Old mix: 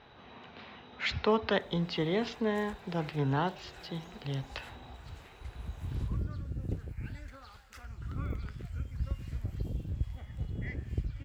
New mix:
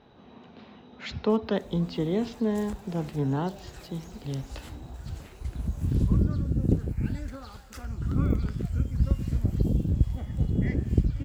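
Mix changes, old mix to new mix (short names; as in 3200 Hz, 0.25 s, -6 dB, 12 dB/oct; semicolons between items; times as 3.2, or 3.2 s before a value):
background +10.0 dB; master: add EQ curve 110 Hz 0 dB, 210 Hz +7 dB, 2100 Hz -8 dB, 7200 Hz 0 dB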